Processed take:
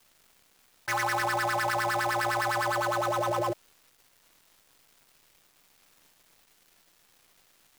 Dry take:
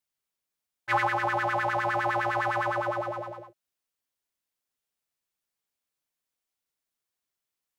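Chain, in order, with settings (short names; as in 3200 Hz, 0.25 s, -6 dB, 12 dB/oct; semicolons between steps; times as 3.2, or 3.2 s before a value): switching dead time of 0.095 ms; fast leveller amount 100%; gain -6 dB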